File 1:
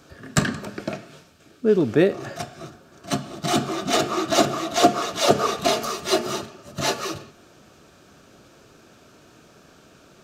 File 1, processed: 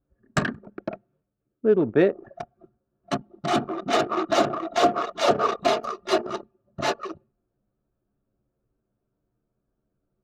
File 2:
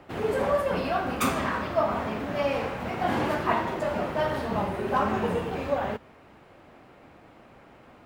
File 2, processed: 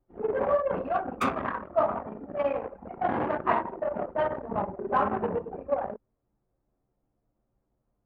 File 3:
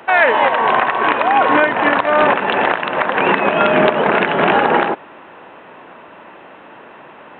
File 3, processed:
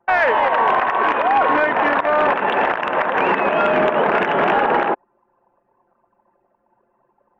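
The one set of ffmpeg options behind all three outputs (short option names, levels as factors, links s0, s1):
-filter_complex "[0:a]anlmdn=398,asplit=2[s0][s1];[s1]highpass=f=720:p=1,volume=2.51,asoftclip=type=tanh:threshold=0.891[s2];[s0][s2]amix=inputs=2:normalize=0,lowpass=f=1300:p=1,volume=0.501,alimiter=limit=0.398:level=0:latency=1:release=56"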